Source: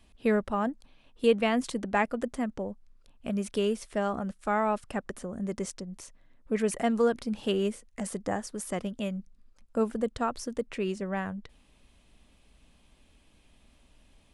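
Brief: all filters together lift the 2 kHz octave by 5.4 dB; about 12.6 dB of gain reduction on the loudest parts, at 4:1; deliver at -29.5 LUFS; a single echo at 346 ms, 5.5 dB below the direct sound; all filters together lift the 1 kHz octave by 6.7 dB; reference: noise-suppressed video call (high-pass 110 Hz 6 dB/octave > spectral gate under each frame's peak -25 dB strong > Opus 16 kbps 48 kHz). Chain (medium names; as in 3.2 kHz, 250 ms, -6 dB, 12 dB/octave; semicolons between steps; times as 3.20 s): peaking EQ 1 kHz +8 dB; peaking EQ 2 kHz +4 dB; compression 4:1, threshold -31 dBFS; high-pass 110 Hz 6 dB/octave; delay 346 ms -5.5 dB; spectral gate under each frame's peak -25 dB strong; trim +6.5 dB; Opus 16 kbps 48 kHz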